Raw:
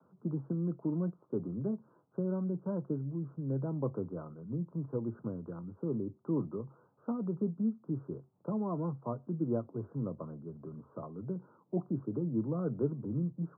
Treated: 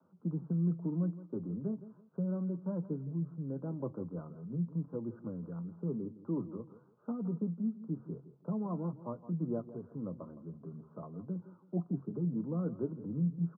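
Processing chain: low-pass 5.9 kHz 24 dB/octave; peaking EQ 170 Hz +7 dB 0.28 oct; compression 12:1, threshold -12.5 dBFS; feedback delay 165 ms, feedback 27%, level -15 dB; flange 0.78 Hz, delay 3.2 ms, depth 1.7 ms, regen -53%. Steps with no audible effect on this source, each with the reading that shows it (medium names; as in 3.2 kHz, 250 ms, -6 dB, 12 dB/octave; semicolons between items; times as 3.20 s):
low-pass 5.9 kHz: input has nothing above 1.3 kHz; compression, threshold -12.5 dBFS: peak at its input -19.5 dBFS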